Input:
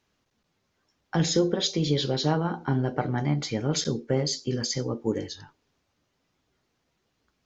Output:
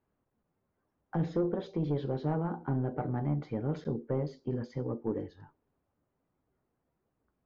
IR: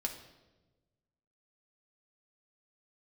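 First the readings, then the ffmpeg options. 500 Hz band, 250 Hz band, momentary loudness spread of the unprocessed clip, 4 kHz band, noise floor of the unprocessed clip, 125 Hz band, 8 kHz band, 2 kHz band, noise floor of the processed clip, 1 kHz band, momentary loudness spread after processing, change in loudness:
-6.5 dB, -6.0 dB, 6 LU, under -25 dB, -76 dBFS, -5.5 dB, n/a, -13.5 dB, -82 dBFS, -7.5 dB, 5 LU, -7.0 dB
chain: -af "asoftclip=type=tanh:threshold=-18.5dB,lowpass=1.1k,volume=-4dB"

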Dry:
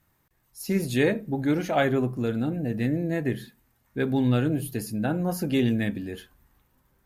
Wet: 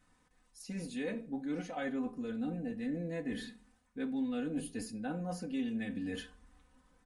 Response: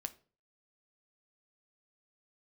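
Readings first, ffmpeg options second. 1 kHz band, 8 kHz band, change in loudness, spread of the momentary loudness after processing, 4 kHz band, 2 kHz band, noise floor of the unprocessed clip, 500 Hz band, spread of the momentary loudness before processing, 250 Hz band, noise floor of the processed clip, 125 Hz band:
-13.0 dB, -10.0 dB, -12.0 dB, 8 LU, -11.5 dB, -13.0 dB, -69 dBFS, -14.5 dB, 10 LU, -10.5 dB, -71 dBFS, -18.0 dB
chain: -filter_complex "[0:a]aecho=1:1:4:0.95,areverse,acompressor=threshold=-34dB:ratio=6,areverse[a];[1:a]atrim=start_sample=2205[b];[a][b]afir=irnorm=-1:irlink=0,aresample=22050,aresample=44100"

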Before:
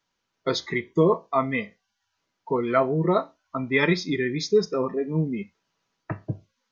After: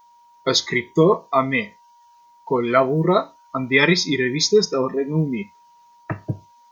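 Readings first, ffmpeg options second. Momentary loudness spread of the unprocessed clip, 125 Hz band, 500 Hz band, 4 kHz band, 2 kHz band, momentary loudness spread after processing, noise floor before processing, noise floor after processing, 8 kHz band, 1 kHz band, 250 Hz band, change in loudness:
14 LU, +4.0 dB, +4.0 dB, +11.0 dB, +7.0 dB, 14 LU, -79 dBFS, -53 dBFS, n/a, +5.0 dB, +4.0 dB, +5.0 dB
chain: -af "aemphasis=mode=production:type=75kf,aeval=exprs='val(0)+0.002*sin(2*PI*950*n/s)':c=same,volume=4dB"

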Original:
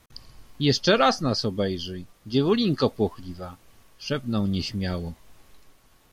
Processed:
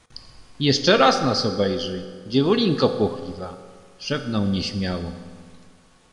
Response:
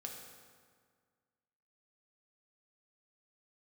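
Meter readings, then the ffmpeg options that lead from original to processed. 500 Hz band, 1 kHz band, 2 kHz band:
+4.0 dB, +4.0 dB, +4.0 dB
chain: -filter_complex "[0:a]aresample=22050,aresample=44100,asplit=2[a][b];[1:a]atrim=start_sample=2205,lowshelf=f=150:g=-11[c];[b][c]afir=irnorm=-1:irlink=0,volume=3.5dB[d];[a][d]amix=inputs=2:normalize=0,volume=-1.5dB"

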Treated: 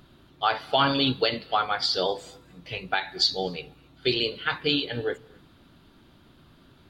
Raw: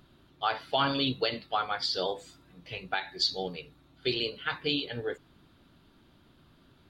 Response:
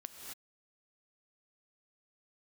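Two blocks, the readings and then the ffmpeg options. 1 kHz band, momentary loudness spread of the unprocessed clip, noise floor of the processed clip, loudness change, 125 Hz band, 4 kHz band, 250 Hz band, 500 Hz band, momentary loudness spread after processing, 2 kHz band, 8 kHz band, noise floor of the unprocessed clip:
+5.0 dB, 11 LU, -57 dBFS, +5.0 dB, +5.0 dB, +5.0 dB, +5.0 dB, +5.0 dB, 11 LU, +5.0 dB, +5.0 dB, -62 dBFS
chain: -filter_complex "[0:a]asplit=2[a][b];[1:a]atrim=start_sample=2205[c];[b][c]afir=irnorm=-1:irlink=0,volume=-16dB[d];[a][d]amix=inputs=2:normalize=0,volume=4.5dB"

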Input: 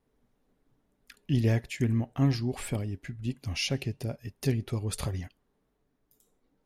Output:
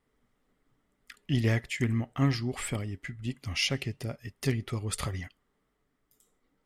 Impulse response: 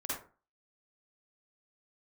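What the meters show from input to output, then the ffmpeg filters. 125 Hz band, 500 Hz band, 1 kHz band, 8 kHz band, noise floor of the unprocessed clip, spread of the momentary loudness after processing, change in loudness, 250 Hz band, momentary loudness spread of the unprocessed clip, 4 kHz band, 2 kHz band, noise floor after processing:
-1.5 dB, -1.0 dB, +2.5 dB, +2.0 dB, -75 dBFS, 11 LU, -0.5 dB, -1.5 dB, 10 LU, +3.0 dB, +4.5 dB, -77 dBFS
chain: -af "equalizer=f=1.25k:t=o:w=0.33:g=9,equalizer=f=2k:t=o:w=0.33:g=10,equalizer=f=3.15k:t=o:w=0.33:g=6,equalizer=f=5k:t=o:w=0.33:g=3,equalizer=f=8k:t=o:w=0.33:g=7,aeval=exprs='0.224*(cos(1*acos(clip(val(0)/0.224,-1,1)))-cos(1*PI/2))+0.0158*(cos(3*acos(clip(val(0)/0.224,-1,1)))-cos(3*PI/2))':c=same"

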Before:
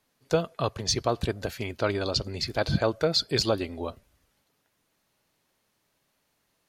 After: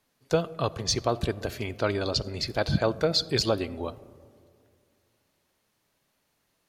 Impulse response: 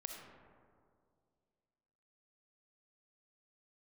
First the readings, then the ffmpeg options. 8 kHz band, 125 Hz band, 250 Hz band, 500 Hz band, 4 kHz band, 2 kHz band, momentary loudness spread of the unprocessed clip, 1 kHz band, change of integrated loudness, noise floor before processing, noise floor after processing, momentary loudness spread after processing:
-0.5 dB, +0.5 dB, +0.5 dB, 0.0 dB, -0.5 dB, -0.5 dB, 9 LU, 0.0 dB, 0.0 dB, -74 dBFS, -74 dBFS, 9 LU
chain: -filter_complex "[0:a]asplit=2[a][b];[1:a]atrim=start_sample=2205,lowshelf=f=500:g=5.5[c];[b][c]afir=irnorm=-1:irlink=0,volume=-12.5dB[d];[a][d]amix=inputs=2:normalize=0,volume=-1.5dB"

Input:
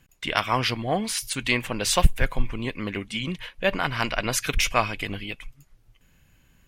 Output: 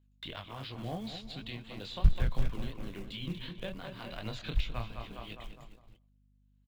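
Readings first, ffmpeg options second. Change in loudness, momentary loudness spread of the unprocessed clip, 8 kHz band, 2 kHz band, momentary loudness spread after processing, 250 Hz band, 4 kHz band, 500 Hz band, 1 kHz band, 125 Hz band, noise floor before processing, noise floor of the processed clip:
-12.5 dB, 9 LU, -30.5 dB, -20.0 dB, 14 LU, -11.0 dB, -14.5 dB, -15.5 dB, -18.5 dB, -6.0 dB, -61 dBFS, -67 dBFS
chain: -filter_complex "[0:a]equalizer=f=7.2k:w=6.2:g=12.5,tremolo=f=0.88:d=0.8,firequalizer=gain_entry='entry(300,0);entry(2200,-7);entry(3900,9);entry(5600,-11);entry(11000,-22)':delay=0.05:min_phase=1,flanger=delay=19:depth=7.2:speed=2.8,acrusher=bits=4:mode=log:mix=0:aa=0.000001,asplit=2[a][b];[b]adelay=205,lowpass=f=2.4k:p=1,volume=-10dB,asplit=2[c][d];[d]adelay=205,lowpass=f=2.4k:p=1,volume=0.54,asplit=2[e][f];[f]adelay=205,lowpass=f=2.4k:p=1,volume=0.54,asplit=2[g][h];[h]adelay=205,lowpass=f=2.4k:p=1,volume=0.54,asplit=2[i][j];[j]adelay=205,lowpass=f=2.4k:p=1,volume=0.54,asplit=2[k][l];[l]adelay=205,lowpass=f=2.4k:p=1,volume=0.54[m];[c][e][g][i][k][m]amix=inputs=6:normalize=0[n];[a][n]amix=inputs=2:normalize=0,agate=range=-23dB:threshold=-56dB:ratio=16:detection=peak,acrossover=split=160[o][p];[p]acompressor=threshold=-41dB:ratio=4[q];[o][q]amix=inputs=2:normalize=0,aeval=exprs='val(0)+0.000447*(sin(2*PI*50*n/s)+sin(2*PI*2*50*n/s)/2+sin(2*PI*3*50*n/s)/3+sin(2*PI*4*50*n/s)/4+sin(2*PI*5*50*n/s)/5)':c=same,acrossover=split=3900[r][s];[s]acompressor=threshold=-59dB:ratio=6[t];[r][t]amix=inputs=2:normalize=0,volume=1dB"

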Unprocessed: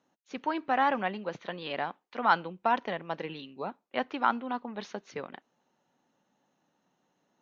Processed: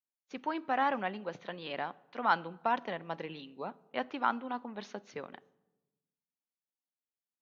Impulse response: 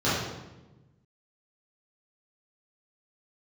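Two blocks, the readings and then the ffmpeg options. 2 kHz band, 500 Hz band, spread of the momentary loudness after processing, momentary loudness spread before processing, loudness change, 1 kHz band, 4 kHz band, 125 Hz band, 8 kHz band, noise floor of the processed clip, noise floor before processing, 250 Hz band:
-4.0 dB, -4.0 dB, 14 LU, 14 LU, -4.0 dB, -4.0 dB, -4.0 dB, -3.5 dB, n/a, under -85 dBFS, -77 dBFS, -3.5 dB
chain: -filter_complex "[0:a]agate=range=-33dB:threshold=-55dB:ratio=3:detection=peak,asplit=2[a][b];[1:a]atrim=start_sample=2205[c];[b][c]afir=irnorm=-1:irlink=0,volume=-37dB[d];[a][d]amix=inputs=2:normalize=0,volume=-4dB"

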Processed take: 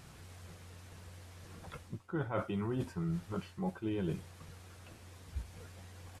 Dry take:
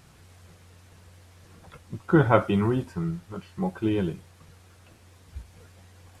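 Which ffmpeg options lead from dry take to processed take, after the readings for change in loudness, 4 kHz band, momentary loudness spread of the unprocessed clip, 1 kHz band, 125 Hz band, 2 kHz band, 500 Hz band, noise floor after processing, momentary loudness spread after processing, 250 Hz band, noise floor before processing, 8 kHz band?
-14.0 dB, -8.5 dB, 21 LU, -14.5 dB, -10.5 dB, -14.0 dB, -13.5 dB, -56 dBFS, 17 LU, -11.5 dB, -55 dBFS, n/a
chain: -af "areverse,acompressor=threshold=-32dB:ratio=16,areverse,aresample=32000,aresample=44100"

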